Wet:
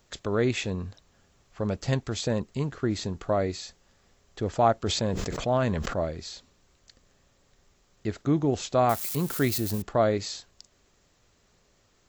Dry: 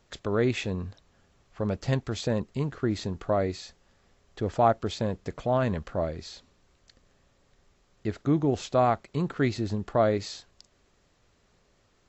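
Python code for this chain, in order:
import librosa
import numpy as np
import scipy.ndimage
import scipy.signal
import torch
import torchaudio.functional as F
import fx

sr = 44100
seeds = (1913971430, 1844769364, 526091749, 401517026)

y = fx.crossing_spikes(x, sr, level_db=-30.0, at=(8.89, 9.82))
y = fx.high_shelf(y, sr, hz=6700.0, db=10.5)
y = fx.sustainer(y, sr, db_per_s=28.0, at=(4.84, 5.97))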